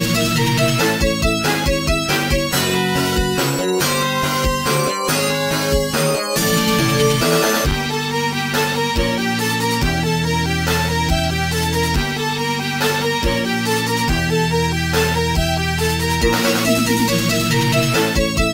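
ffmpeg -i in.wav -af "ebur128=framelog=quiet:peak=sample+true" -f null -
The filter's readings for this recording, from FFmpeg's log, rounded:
Integrated loudness:
  I:         -17.1 LUFS
  Threshold: -27.1 LUFS
Loudness range:
  LRA:         1.7 LU
  Threshold: -37.3 LUFS
  LRA low:   -18.1 LUFS
  LRA high:  -16.4 LUFS
Sample peak:
  Peak:       -2.9 dBFS
True peak:
  Peak:       -2.8 dBFS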